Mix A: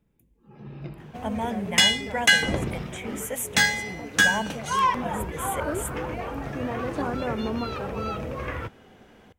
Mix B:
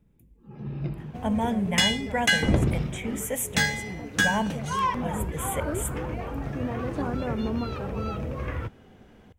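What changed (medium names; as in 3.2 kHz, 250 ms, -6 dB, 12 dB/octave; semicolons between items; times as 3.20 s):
speech: send +9.0 dB; second sound -4.5 dB; master: add bass shelf 280 Hz +9 dB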